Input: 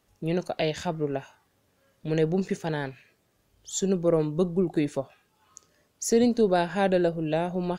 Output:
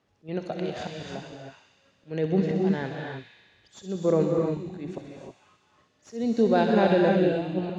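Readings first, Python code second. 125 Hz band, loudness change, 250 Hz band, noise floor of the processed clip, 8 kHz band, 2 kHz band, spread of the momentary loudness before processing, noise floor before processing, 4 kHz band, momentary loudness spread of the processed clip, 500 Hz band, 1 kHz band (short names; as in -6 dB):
0.0 dB, +1.0 dB, +1.0 dB, -67 dBFS, under -15 dB, +0.5 dB, 11 LU, -70 dBFS, -2.5 dB, 19 LU, 0.0 dB, +1.0 dB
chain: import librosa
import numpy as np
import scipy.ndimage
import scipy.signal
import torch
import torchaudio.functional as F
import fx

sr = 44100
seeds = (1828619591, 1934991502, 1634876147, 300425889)

p1 = fx.tracing_dist(x, sr, depth_ms=0.021)
p2 = scipy.signal.sosfilt(scipy.signal.butter(2, 89.0, 'highpass', fs=sr, output='sos'), p1)
p3 = fx.dynamic_eq(p2, sr, hz=220.0, q=5.6, threshold_db=-42.0, ratio=4.0, max_db=4)
p4 = fx.level_steps(p3, sr, step_db=13)
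p5 = p3 + (p4 * librosa.db_to_amplitude(2.0))
p6 = fx.auto_swell(p5, sr, attack_ms=269.0)
p7 = fx.air_absorb(p6, sr, metres=130.0)
p8 = p7 + fx.echo_wet_highpass(p7, sr, ms=64, feedback_pct=80, hz=2600.0, wet_db=-6.0, dry=0)
p9 = fx.rev_gated(p8, sr, seeds[0], gate_ms=340, shape='rising', drr_db=1.0)
y = p9 * librosa.db_to_amplitude(-4.0)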